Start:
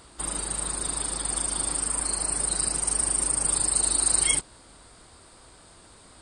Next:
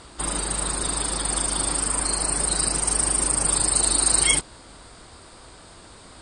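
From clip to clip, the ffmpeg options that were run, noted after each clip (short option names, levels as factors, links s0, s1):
-af "lowpass=8100,volume=2.11"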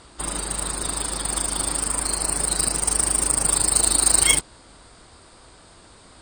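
-af "aeval=exprs='0.562*(cos(1*acos(clip(val(0)/0.562,-1,1)))-cos(1*PI/2))+0.0398*(cos(7*acos(clip(val(0)/0.562,-1,1)))-cos(7*PI/2))':c=same,volume=1.41"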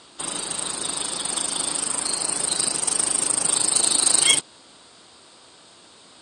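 -af "aexciter=amount=2.9:drive=2.9:freq=2800,highpass=180,lowpass=5500,volume=0.841"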